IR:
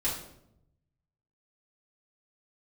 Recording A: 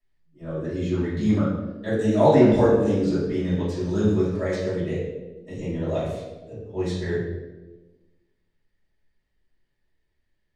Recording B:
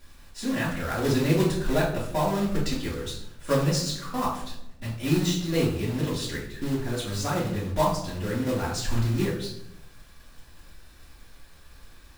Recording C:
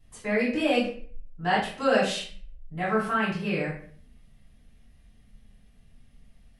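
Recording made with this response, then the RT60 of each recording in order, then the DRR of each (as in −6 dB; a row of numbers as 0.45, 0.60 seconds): B; 1.2, 0.80, 0.50 seconds; −12.5, −8.0, −8.5 decibels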